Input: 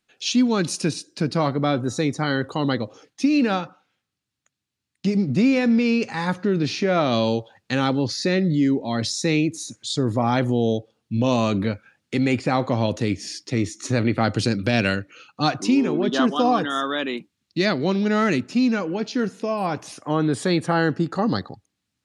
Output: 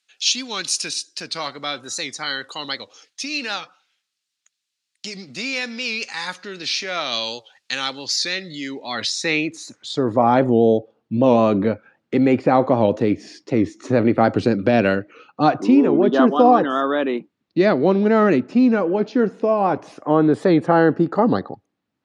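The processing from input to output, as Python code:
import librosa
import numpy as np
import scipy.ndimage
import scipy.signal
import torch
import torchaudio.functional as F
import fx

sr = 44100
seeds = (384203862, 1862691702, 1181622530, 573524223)

y = fx.filter_sweep_bandpass(x, sr, from_hz=5200.0, to_hz=520.0, start_s=8.35, end_s=10.42, q=0.71)
y = fx.record_warp(y, sr, rpm=78.0, depth_cents=100.0)
y = y * librosa.db_to_amplitude(8.0)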